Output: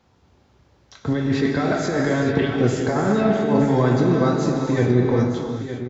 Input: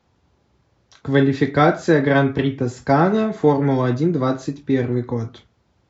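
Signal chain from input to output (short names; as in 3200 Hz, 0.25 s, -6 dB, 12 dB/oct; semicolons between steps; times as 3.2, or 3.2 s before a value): negative-ratio compressor -20 dBFS, ratio -1; on a send: echo 0.917 s -10.5 dB; on the sum: non-linear reverb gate 0.44 s flat, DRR 1.5 dB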